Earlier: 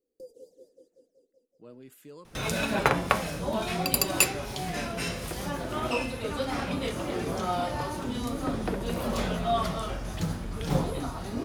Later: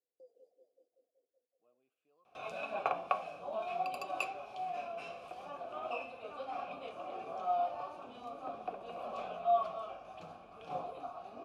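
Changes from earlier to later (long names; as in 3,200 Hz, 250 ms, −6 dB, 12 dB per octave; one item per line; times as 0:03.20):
speech −11.5 dB
master: add formant filter a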